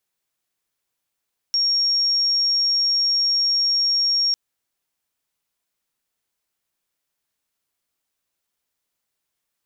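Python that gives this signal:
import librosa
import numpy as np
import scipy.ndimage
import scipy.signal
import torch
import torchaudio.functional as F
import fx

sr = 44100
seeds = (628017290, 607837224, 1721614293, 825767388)

y = 10.0 ** (-16.5 / 20.0) * np.sin(2.0 * np.pi * (5560.0 * (np.arange(round(2.8 * sr)) / sr)))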